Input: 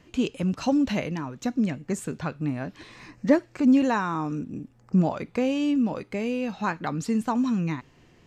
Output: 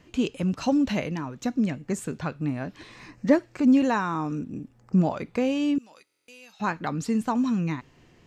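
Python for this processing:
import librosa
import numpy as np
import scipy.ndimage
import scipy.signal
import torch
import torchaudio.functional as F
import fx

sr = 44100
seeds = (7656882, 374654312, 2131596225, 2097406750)

y = fx.differentiator(x, sr, at=(5.78, 6.6))
y = fx.buffer_glitch(y, sr, at_s=(6.05,), block=1024, repeats=9)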